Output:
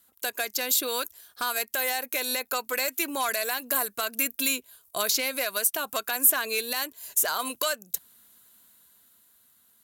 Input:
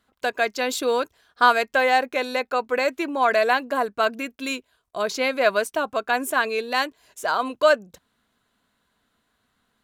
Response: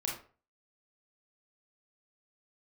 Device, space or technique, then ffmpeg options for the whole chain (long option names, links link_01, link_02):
FM broadcast chain: -filter_complex "[0:a]highpass=47,dynaudnorm=framelen=200:gausssize=13:maxgain=11.5dB,acrossover=split=1200|4300[link_01][link_02][link_03];[link_01]acompressor=threshold=-28dB:ratio=4[link_04];[link_02]acompressor=threshold=-27dB:ratio=4[link_05];[link_03]acompressor=threshold=-40dB:ratio=4[link_06];[link_04][link_05][link_06]amix=inputs=3:normalize=0,aemphasis=mode=production:type=50fm,alimiter=limit=-13.5dB:level=0:latency=1:release=159,asoftclip=type=hard:threshold=-17dB,lowpass=frequency=15000:width=0.5412,lowpass=frequency=15000:width=1.3066,aemphasis=mode=production:type=50fm,volume=-4dB"